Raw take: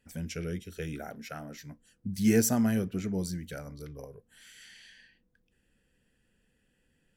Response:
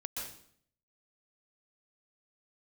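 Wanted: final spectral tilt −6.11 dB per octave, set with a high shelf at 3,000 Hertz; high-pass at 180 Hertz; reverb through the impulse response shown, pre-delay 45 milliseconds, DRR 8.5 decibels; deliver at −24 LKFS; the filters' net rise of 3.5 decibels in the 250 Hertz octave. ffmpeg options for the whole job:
-filter_complex "[0:a]highpass=180,equalizer=frequency=250:width_type=o:gain=6,highshelf=frequency=3000:gain=-5,asplit=2[link_01][link_02];[1:a]atrim=start_sample=2205,adelay=45[link_03];[link_02][link_03]afir=irnorm=-1:irlink=0,volume=-9dB[link_04];[link_01][link_04]amix=inputs=2:normalize=0,volume=4.5dB"

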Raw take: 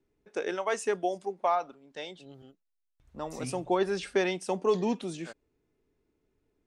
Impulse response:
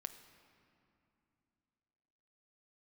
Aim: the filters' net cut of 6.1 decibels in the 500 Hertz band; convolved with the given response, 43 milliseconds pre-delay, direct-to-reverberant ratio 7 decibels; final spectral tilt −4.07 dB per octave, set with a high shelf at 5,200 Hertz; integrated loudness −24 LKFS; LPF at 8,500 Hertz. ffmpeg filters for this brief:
-filter_complex "[0:a]lowpass=8500,equalizer=frequency=500:width_type=o:gain=-8.5,highshelf=frequency=5200:gain=4,asplit=2[link_01][link_02];[1:a]atrim=start_sample=2205,adelay=43[link_03];[link_02][link_03]afir=irnorm=-1:irlink=0,volume=-3.5dB[link_04];[link_01][link_04]amix=inputs=2:normalize=0,volume=10.5dB"

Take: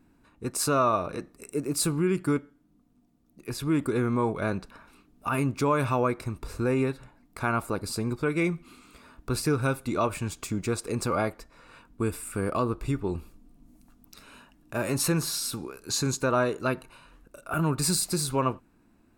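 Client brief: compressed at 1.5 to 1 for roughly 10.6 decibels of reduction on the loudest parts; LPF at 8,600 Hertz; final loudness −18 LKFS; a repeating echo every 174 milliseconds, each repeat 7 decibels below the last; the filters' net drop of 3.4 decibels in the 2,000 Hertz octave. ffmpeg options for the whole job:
ffmpeg -i in.wav -af "lowpass=8600,equalizer=frequency=2000:width_type=o:gain=-5,acompressor=threshold=-52dB:ratio=1.5,aecho=1:1:174|348|522|696|870:0.447|0.201|0.0905|0.0407|0.0183,volume=20.5dB" out.wav

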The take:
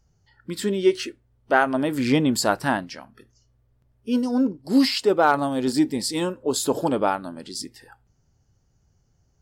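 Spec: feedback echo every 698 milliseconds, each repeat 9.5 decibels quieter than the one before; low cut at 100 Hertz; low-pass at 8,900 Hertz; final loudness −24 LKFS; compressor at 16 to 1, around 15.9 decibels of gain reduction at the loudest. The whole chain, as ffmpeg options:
ffmpeg -i in.wav -af "highpass=100,lowpass=8900,acompressor=threshold=-29dB:ratio=16,aecho=1:1:698|1396|2094|2792:0.335|0.111|0.0365|0.012,volume=10.5dB" out.wav

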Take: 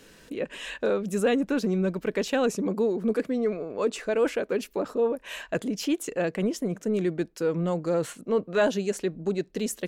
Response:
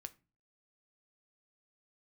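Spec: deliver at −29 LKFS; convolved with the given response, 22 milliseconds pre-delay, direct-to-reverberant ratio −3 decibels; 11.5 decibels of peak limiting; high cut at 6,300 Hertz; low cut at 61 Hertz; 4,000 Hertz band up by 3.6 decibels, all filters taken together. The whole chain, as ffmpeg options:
-filter_complex "[0:a]highpass=61,lowpass=6300,equalizer=frequency=4000:width_type=o:gain=5.5,alimiter=limit=-24dB:level=0:latency=1,asplit=2[link_01][link_02];[1:a]atrim=start_sample=2205,adelay=22[link_03];[link_02][link_03]afir=irnorm=-1:irlink=0,volume=8.5dB[link_04];[link_01][link_04]amix=inputs=2:normalize=0,volume=-1dB"

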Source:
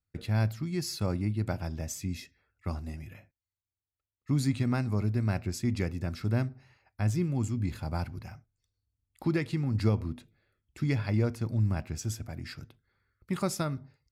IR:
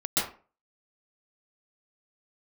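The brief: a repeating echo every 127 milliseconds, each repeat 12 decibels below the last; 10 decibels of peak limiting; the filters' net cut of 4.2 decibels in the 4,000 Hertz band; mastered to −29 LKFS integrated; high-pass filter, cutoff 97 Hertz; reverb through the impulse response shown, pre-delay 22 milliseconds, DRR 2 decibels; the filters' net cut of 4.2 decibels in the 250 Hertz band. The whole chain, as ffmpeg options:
-filter_complex "[0:a]highpass=97,equalizer=frequency=250:width_type=o:gain=-5.5,equalizer=frequency=4000:width_type=o:gain=-5.5,alimiter=level_in=2.5dB:limit=-24dB:level=0:latency=1,volume=-2.5dB,aecho=1:1:127|254|381:0.251|0.0628|0.0157,asplit=2[link_01][link_02];[1:a]atrim=start_sample=2205,adelay=22[link_03];[link_02][link_03]afir=irnorm=-1:irlink=0,volume=-12.5dB[link_04];[link_01][link_04]amix=inputs=2:normalize=0,volume=6.5dB"

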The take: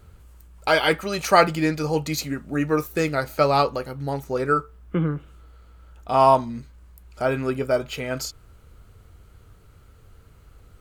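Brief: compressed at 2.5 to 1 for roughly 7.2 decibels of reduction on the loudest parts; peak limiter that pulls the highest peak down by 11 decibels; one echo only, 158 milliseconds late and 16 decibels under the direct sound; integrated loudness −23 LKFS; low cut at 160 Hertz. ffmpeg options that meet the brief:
ffmpeg -i in.wav -af "highpass=160,acompressor=threshold=-21dB:ratio=2.5,alimiter=limit=-20.5dB:level=0:latency=1,aecho=1:1:158:0.158,volume=8.5dB" out.wav

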